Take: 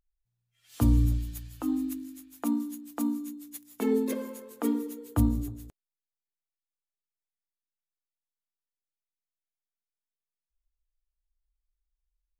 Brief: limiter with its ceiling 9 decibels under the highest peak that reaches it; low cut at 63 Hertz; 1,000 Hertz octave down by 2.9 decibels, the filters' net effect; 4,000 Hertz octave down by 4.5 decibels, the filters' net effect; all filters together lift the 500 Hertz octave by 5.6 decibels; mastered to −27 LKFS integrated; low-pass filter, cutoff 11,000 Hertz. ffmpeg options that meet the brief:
ffmpeg -i in.wav -af "highpass=63,lowpass=11000,equalizer=frequency=500:width_type=o:gain=7.5,equalizer=frequency=1000:width_type=o:gain=-6,equalizer=frequency=4000:width_type=o:gain=-5.5,volume=6dB,alimiter=limit=-15.5dB:level=0:latency=1" out.wav

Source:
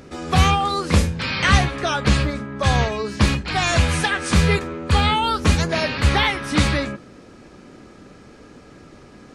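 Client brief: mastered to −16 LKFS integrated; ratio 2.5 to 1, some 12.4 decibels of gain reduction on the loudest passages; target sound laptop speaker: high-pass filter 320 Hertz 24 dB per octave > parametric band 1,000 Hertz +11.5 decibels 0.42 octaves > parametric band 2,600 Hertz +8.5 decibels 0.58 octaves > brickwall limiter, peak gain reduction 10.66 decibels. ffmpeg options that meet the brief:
ffmpeg -i in.wav -af "acompressor=threshold=-30dB:ratio=2.5,highpass=frequency=320:width=0.5412,highpass=frequency=320:width=1.3066,equalizer=frequency=1000:width_type=o:width=0.42:gain=11.5,equalizer=frequency=2600:width_type=o:width=0.58:gain=8.5,volume=13.5dB,alimiter=limit=-7dB:level=0:latency=1" out.wav

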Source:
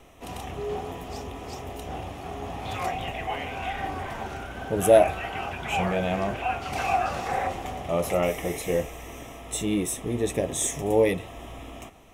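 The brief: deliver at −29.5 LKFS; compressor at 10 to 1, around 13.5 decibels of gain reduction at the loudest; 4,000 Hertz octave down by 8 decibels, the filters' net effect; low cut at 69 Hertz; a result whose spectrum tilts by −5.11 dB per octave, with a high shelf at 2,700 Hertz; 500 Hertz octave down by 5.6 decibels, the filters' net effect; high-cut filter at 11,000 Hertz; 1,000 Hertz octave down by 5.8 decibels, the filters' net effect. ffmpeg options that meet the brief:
ffmpeg -i in.wav -af "highpass=69,lowpass=11000,equalizer=frequency=500:width_type=o:gain=-5,equalizer=frequency=1000:width_type=o:gain=-5,highshelf=frequency=2700:gain=-7,equalizer=frequency=4000:width_type=o:gain=-5,acompressor=threshold=-30dB:ratio=10,volume=7.5dB" out.wav

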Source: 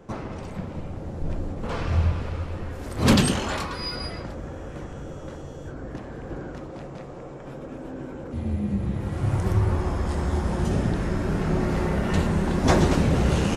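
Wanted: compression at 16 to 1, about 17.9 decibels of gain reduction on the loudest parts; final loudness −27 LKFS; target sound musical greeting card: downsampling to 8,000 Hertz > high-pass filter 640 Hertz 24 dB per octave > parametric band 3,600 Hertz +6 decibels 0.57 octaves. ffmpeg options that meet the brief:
ffmpeg -i in.wav -af "acompressor=threshold=-31dB:ratio=16,aresample=8000,aresample=44100,highpass=frequency=640:width=0.5412,highpass=frequency=640:width=1.3066,equalizer=frequency=3600:width_type=o:width=0.57:gain=6,volume=18dB" out.wav

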